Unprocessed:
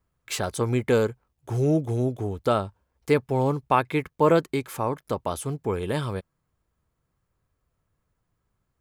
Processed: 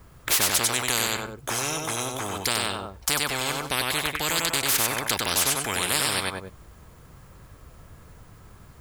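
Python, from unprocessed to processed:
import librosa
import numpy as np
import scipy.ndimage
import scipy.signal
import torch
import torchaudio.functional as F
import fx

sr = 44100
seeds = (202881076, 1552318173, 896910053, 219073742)

y = fx.rider(x, sr, range_db=3, speed_s=2.0)
y = fx.echo_feedback(y, sr, ms=96, feedback_pct=20, wet_db=-6)
y = fx.spectral_comp(y, sr, ratio=10.0)
y = F.gain(torch.from_numpy(y), 3.5).numpy()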